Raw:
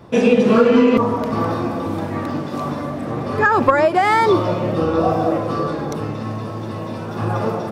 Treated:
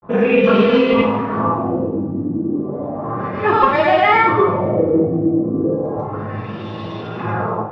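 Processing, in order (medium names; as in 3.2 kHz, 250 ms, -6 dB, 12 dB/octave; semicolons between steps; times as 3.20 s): granulator, pitch spread up and down by 0 st; LFO low-pass sine 0.33 Hz 280–3500 Hz; two-slope reverb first 0.47 s, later 1.6 s, from -17 dB, DRR -2 dB; trim -3 dB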